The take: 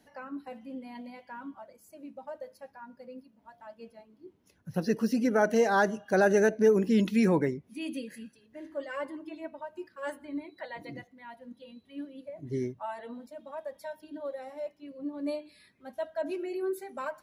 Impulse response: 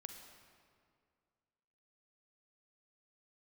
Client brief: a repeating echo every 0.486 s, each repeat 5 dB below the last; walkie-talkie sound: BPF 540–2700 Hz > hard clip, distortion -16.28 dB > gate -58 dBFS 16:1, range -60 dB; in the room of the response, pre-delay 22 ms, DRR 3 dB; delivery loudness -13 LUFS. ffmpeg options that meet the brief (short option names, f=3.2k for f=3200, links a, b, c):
-filter_complex "[0:a]aecho=1:1:486|972|1458|1944|2430|2916|3402:0.562|0.315|0.176|0.0988|0.0553|0.031|0.0173,asplit=2[a][b];[1:a]atrim=start_sample=2205,adelay=22[c];[b][c]afir=irnorm=-1:irlink=0,volume=1.5dB[d];[a][d]amix=inputs=2:normalize=0,highpass=540,lowpass=2.7k,asoftclip=type=hard:threshold=-21dB,agate=range=-60dB:threshold=-58dB:ratio=16,volume=20.5dB"